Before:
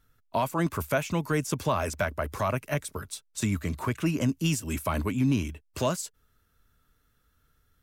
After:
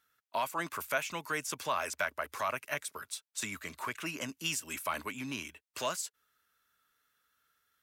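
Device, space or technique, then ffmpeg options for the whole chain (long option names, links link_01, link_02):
filter by subtraction: -filter_complex "[0:a]asplit=2[link_01][link_02];[link_02]lowpass=1700,volume=-1[link_03];[link_01][link_03]amix=inputs=2:normalize=0,volume=-2.5dB"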